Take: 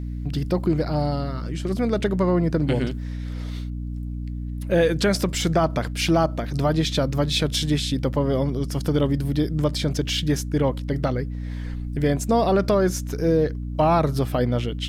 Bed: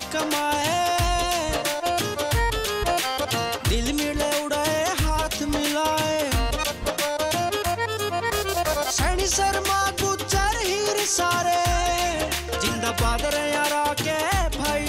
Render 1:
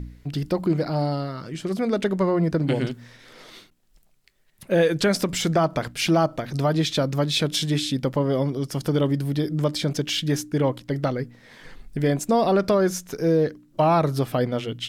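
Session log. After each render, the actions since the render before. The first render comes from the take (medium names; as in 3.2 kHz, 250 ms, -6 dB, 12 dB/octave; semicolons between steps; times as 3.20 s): de-hum 60 Hz, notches 5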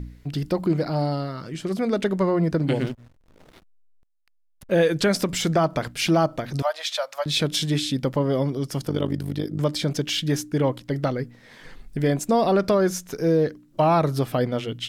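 2.78–4.71 s: hysteresis with a dead band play -35 dBFS; 6.62–7.26 s: elliptic high-pass 580 Hz; 8.85–9.60 s: AM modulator 51 Hz, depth 70%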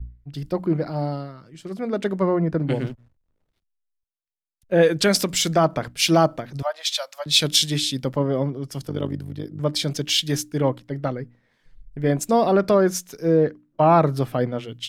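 three bands expanded up and down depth 100%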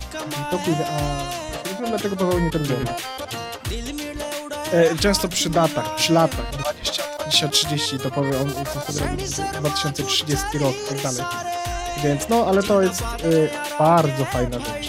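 add bed -5 dB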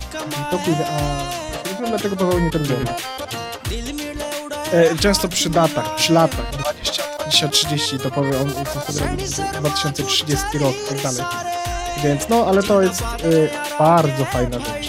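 trim +2.5 dB; peak limiter -2 dBFS, peak gain reduction 1 dB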